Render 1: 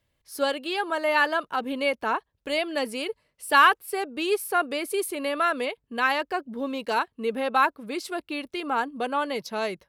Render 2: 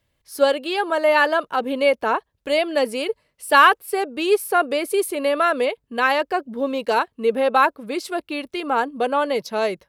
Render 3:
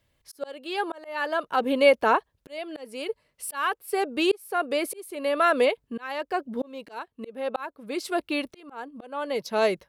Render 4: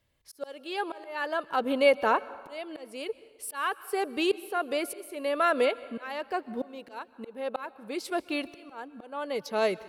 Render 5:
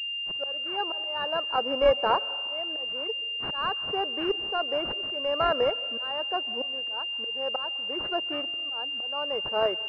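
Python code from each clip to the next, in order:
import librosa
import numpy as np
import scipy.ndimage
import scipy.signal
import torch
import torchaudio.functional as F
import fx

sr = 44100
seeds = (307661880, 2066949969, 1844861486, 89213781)

y1 = fx.dynamic_eq(x, sr, hz=530.0, q=1.5, threshold_db=-38.0, ratio=4.0, max_db=6)
y1 = y1 * librosa.db_to_amplitude(3.5)
y2 = fx.auto_swell(y1, sr, attack_ms=669.0)
y3 = fx.rev_plate(y2, sr, seeds[0], rt60_s=1.5, hf_ratio=0.75, predelay_ms=115, drr_db=18.0)
y3 = y3 * librosa.db_to_amplitude(-3.5)
y4 = scipy.signal.sosfilt(scipy.signal.bessel(2, 580.0, 'highpass', norm='mag', fs=sr, output='sos'), y3)
y4 = fx.pwm(y4, sr, carrier_hz=2800.0)
y4 = y4 * librosa.db_to_amplitude(4.0)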